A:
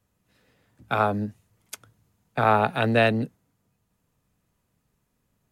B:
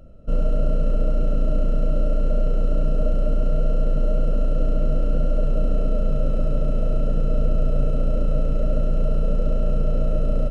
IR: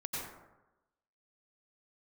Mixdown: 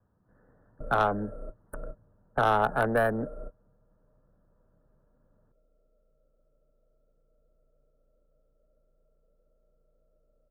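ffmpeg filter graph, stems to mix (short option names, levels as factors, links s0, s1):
-filter_complex "[0:a]adynamicsmooth=sensitivity=3:basefreq=2800,volume=1.41,asplit=2[s0][s1];[1:a]lowshelf=f=310:t=q:w=1.5:g=-6.5,volume=0.251[s2];[s1]apad=whole_len=463103[s3];[s2][s3]sidechaingate=range=0.0251:threshold=0.00224:ratio=16:detection=peak[s4];[s0][s4]amix=inputs=2:normalize=0,acrossover=split=360|850[s5][s6][s7];[s5]acompressor=threshold=0.02:ratio=4[s8];[s6]acompressor=threshold=0.0631:ratio=4[s9];[s7]acompressor=threshold=0.1:ratio=4[s10];[s8][s9][s10]amix=inputs=3:normalize=0,asuperstop=centerf=4100:order=20:qfactor=0.57,aeval=exprs='(tanh(5.01*val(0)+0.25)-tanh(0.25))/5.01':c=same"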